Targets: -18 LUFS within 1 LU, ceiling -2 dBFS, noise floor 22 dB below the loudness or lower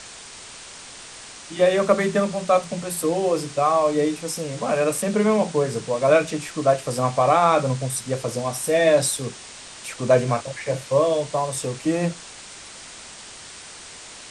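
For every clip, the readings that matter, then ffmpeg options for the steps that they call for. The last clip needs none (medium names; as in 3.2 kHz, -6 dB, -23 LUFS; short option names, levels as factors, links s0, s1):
noise floor -41 dBFS; noise floor target -44 dBFS; loudness -21.5 LUFS; peak level -4.5 dBFS; loudness target -18.0 LUFS
-> -af "afftdn=nr=6:nf=-41"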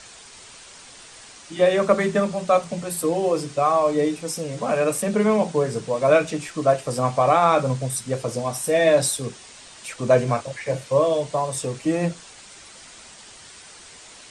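noise floor -45 dBFS; loudness -21.5 LUFS; peak level -4.5 dBFS; loudness target -18.0 LUFS
-> -af "volume=1.5,alimiter=limit=0.794:level=0:latency=1"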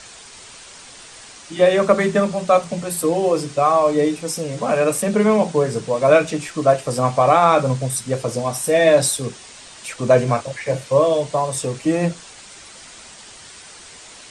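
loudness -18.0 LUFS; peak level -2.0 dBFS; noise floor -41 dBFS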